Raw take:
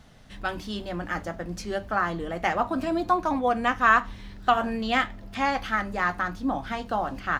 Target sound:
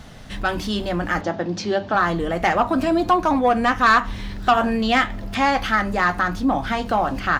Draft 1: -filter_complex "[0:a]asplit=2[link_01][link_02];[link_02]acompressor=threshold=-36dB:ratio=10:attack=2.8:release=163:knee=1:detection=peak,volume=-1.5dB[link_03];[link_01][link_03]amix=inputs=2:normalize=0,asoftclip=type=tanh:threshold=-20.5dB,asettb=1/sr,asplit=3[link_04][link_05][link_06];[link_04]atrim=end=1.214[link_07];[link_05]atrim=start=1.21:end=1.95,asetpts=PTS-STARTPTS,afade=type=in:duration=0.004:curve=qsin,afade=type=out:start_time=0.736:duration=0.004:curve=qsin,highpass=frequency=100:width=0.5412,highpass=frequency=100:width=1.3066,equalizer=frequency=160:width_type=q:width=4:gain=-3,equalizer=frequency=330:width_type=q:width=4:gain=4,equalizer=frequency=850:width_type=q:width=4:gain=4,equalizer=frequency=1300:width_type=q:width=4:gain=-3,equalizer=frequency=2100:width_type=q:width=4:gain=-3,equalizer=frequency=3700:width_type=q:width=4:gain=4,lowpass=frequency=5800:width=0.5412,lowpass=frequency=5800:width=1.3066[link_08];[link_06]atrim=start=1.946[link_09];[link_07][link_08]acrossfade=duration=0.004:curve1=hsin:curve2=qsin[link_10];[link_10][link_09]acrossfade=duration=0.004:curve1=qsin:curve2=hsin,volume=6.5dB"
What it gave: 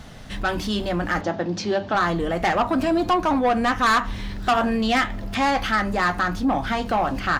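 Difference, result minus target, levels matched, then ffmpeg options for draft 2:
soft clipping: distortion +6 dB
-filter_complex "[0:a]asplit=2[link_01][link_02];[link_02]acompressor=threshold=-36dB:ratio=10:attack=2.8:release=163:knee=1:detection=peak,volume=-1.5dB[link_03];[link_01][link_03]amix=inputs=2:normalize=0,asoftclip=type=tanh:threshold=-14dB,asettb=1/sr,asplit=3[link_04][link_05][link_06];[link_04]atrim=end=1.214[link_07];[link_05]atrim=start=1.21:end=1.95,asetpts=PTS-STARTPTS,afade=type=in:duration=0.004:curve=qsin,afade=type=out:start_time=0.736:duration=0.004:curve=qsin,highpass=frequency=100:width=0.5412,highpass=frequency=100:width=1.3066,equalizer=frequency=160:width_type=q:width=4:gain=-3,equalizer=frequency=330:width_type=q:width=4:gain=4,equalizer=frequency=850:width_type=q:width=4:gain=4,equalizer=frequency=1300:width_type=q:width=4:gain=-3,equalizer=frequency=2100:width_type=q:width=4:gain=-3,equalizer=frequency=3700:width_type=q:width=4:gain=4,lowpass=frequency=5800:width=0.5412,lowpass=frequency=5800:width=1.3066[link_08];[link_06]atrim=start=1.946[link_09];[link_07][link_08]acrossfade=duration=0.004:curve1=hsin:curve2=qsin[link_10];[link_10][link_09]acrossfade=duration=0.004:curve1=qsin:curve2=hsin,volume=6.5dB"

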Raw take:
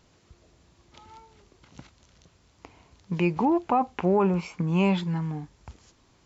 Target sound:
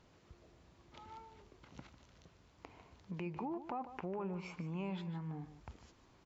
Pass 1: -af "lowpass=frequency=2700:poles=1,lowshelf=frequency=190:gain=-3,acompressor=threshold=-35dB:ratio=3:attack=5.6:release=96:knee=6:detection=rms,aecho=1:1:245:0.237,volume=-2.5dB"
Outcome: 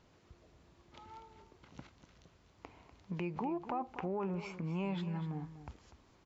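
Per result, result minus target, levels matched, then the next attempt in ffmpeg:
echo 96 ms late; downward compressor: peak gain reduction −4 dB
-af "lowpass=frequency=2700:poles=1,lowshelf=frequency=190:gain=-3,acompressor=threshold=-35dB:ratio=3:attack=5.6:release=96:knee=6:detection=rms,aecho=1:1:149:0.237,volume=-2.5dB"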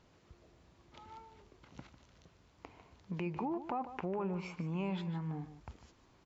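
downward compressor: peak gain reduction −4 dB
-af "lowpass=frequency=2700:poles=1,lowshelf=frequency=190:gain=-3,acompressor=threshold=-41dB:ratio=3:attack=5.6:release=96:knee=6:detection=rms,aecho=1:1:149:0.237,volume=-2.5dB"

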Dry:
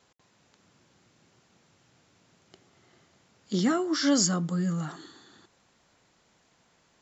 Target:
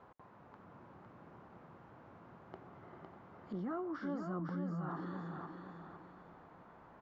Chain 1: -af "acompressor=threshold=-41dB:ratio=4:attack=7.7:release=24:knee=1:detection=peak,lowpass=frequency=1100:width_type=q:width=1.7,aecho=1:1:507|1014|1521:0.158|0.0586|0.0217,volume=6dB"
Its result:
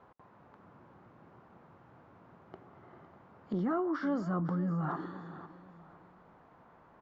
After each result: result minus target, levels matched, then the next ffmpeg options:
downward compressor: peak gain reduction −8.5 dB; echo-to-direct −10.5 dB
-af "acompressor=threshold=-52dB:ratio=4:attack=7.7:release=24:knee=1:detection=peak,lowpass=frequency=1100:width_type=q:width=1.7,aecho=1:1:507|1014|1521:0.158|0.0586|0.0217,volume=6dB"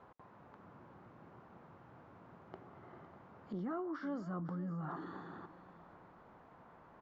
echo-to-direct −10.5 dB
-af "acompressor=threshold=-52dB:ratio=4:attack=7.7:release=24:knee=1:detection=peak,lowpass=frequency=1100:width_type=q:width=1.7,aecho=1:1:507|1014|1521|2028:0.531|0.196|0.0727|0.0269,volume=6dB"

